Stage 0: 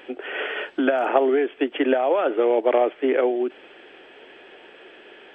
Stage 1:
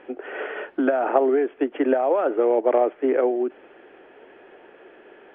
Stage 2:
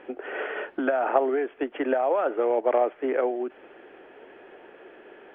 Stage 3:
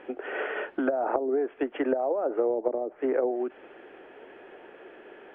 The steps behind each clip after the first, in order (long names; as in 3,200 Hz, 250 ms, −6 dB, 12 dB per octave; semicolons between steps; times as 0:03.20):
low-pass filter 1,500 Hz 12 dB per octave
dynamic equaliser 310 Hz, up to −7 dB, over −33 dBFS, Q 0.86
treble cut that deepens with the level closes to 360 Hz, closed at −18.5 dBFS